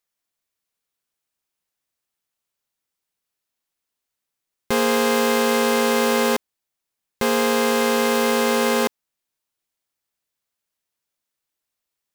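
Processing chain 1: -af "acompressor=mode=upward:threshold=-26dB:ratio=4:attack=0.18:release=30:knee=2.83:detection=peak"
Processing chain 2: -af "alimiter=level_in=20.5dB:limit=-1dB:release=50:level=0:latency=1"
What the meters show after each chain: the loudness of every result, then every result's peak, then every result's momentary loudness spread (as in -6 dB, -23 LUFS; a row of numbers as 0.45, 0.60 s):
-19.5, -9.0 LUFS; -9.0, -1.0 dBFS; 4, 4 LU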